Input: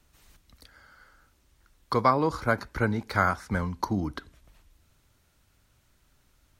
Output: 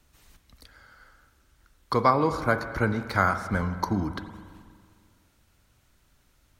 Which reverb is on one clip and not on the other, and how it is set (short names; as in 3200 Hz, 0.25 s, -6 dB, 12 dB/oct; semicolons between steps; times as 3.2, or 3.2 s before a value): spring tank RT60 2 s, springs 41/45 ms, chirp 70 ms, DRR 9.5 dB; gain +1 dB